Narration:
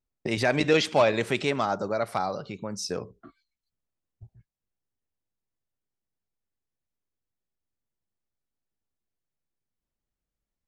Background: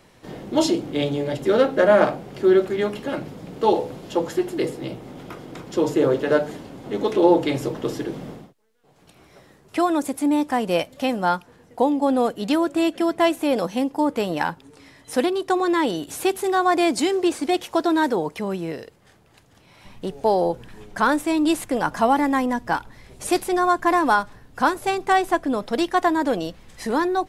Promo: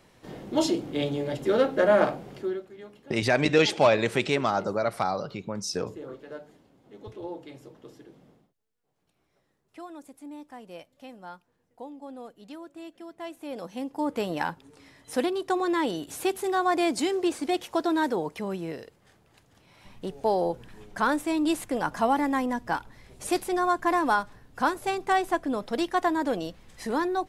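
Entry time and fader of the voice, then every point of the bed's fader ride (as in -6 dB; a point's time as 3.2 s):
2.85 s, +1.0 dB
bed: 2.32 s -5 dB
2.64 s -22 dB
13.11 s -22 dB
14.17 s -5.5 dB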